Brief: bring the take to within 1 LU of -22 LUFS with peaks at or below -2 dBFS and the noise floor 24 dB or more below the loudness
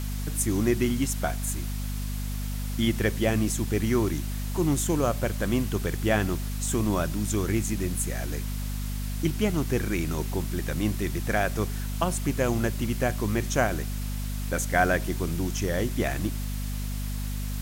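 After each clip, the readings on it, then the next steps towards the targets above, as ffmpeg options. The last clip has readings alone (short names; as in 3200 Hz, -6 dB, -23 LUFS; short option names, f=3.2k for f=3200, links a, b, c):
hum 50 Hz; harmonics up to 250 Hz; hum level -28 dBFS; noise floor -31 dBFS; noise floor target -52 dBFS; loudness -28.0 LUFS; peak -8.0 dBFS; loudness target -22.0 LUFS
-> -af "bandreject=f=50:t=h:w=6,bandreject=f=100:t=h:w=6,bandreject=f=150:t=h:w=6,bandreject=f=200:t=h:w=6,bandreject=f=250:t=h:w=6"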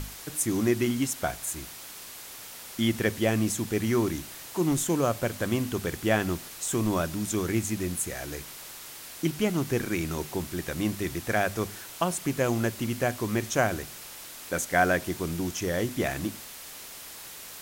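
hum none; noise floor -43 dBFS; noise floor target -53 dBFS
-> -af "afftdn=nr=10:nf=-43"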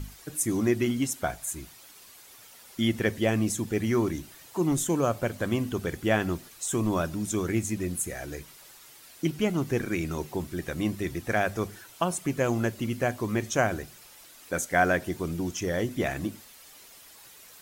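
noise floor -51 dBFS; noise floor target -53 dBFS
-> -af "afftdn=nr=6:nf=-51"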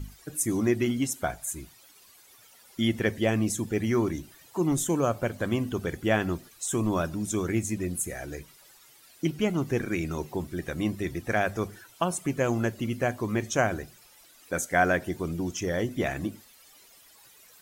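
noise floor -56 dBFS; loudness -29.0 LUFS; peak -9.5 dBFS; loudness target -22.0 LUFS
-> -af "volume=7dB"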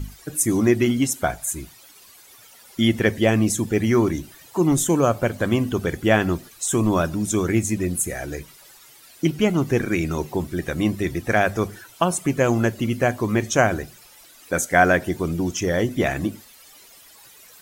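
loudness -22.0 LUFS; peak -2.5 dBFS; noise floor -49 dBFS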